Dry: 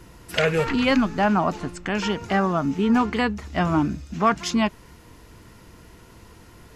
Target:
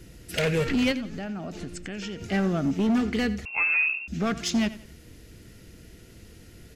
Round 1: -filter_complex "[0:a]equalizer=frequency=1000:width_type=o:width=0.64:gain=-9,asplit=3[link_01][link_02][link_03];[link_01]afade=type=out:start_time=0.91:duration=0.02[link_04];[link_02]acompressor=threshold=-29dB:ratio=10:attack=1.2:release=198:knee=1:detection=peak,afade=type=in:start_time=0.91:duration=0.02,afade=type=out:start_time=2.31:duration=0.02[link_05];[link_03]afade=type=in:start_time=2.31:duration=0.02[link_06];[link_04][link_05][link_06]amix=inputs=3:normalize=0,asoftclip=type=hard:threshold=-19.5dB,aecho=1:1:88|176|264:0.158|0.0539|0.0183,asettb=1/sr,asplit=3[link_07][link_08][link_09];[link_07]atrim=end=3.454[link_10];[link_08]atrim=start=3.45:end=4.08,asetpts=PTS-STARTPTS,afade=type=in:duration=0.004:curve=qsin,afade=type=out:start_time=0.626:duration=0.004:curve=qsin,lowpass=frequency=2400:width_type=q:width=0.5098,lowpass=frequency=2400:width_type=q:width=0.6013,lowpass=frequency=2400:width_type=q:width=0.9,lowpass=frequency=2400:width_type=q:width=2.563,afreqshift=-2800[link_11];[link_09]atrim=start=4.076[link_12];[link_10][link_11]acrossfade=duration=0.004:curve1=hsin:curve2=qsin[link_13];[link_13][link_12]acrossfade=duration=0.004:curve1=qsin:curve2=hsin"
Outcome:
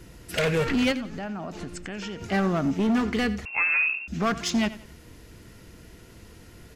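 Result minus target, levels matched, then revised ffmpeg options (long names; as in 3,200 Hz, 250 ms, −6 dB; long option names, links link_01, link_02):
1,000 Hz band +4.0 dB
-filter_complex "[0:a]equalizer=frequency=1000:width_type=o:width=0.64:gain=-20.5,asplit=3[link_01][link_02][link_03];[link_01]afade=type=out:start_time=0.91:duration=0.02[link_04];[link_02]acompressor=threshold=-29dB:ratio=10:attack=1.2:release=198:knee=1:detection=peak,afade=type=in:start_time=0.91:duration=0.02,afade=type=out:start_time=2.31:duration=0.02[link_05];[link_03]afade=type=in:start_time=2.31:duration=0.02[link_06];[link_04][link_05][link_06]amix=inputs=3:normalize=0,asoftclip=type=hard:threshold=-19.5dB,aecho=1:1:88|176|264:0.158|0.0539|0.0183,asettb=1/sr,asplit=3[link_07][link_08][link_09];[link_07]atrim=end=3.454[link_10];[link_08]atrim=start=3.45:end=4.08,asetpts=PTS-STARTPTS,afade=type=in:duration=0.004:curve=qsin,afade=type=out:start_time=0.626:duration=0.004:curve=qsin,lowpass=frequency=2400:width_type=q:width=0.5098,lowpass=frequency=2400:width_type=q:width=0.6013,lowpass=frequency=2400:width_type=q:width=0.9,lowpass=frequency=2400:width_type=q:width=2.563,afreqshift=-2800[link_11];[link_09]atrim=start=4.076[link_12];[link_10][link_11]acrossfade=duration=0.004:curve1=hsin:curve2=qsin[link_13];[link_13][link_12]acrossfade=duration=0.004:curve1=qsin:curve2=hsin"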